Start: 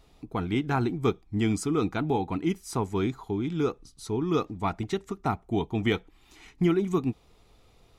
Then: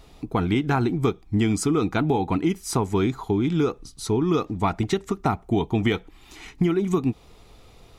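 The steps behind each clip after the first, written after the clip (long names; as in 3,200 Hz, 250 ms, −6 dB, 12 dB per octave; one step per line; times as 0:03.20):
downward compressor, threshold −27 dBFS, peak gain reduction 9 dB
level +9 dB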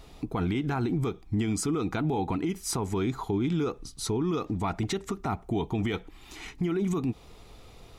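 brickwall limiter −21 dBFS, peak gain reduction 11.5 dB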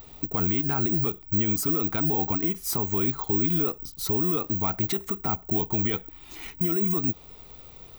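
bad sample-rate conversion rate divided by 2×, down none, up zero stuff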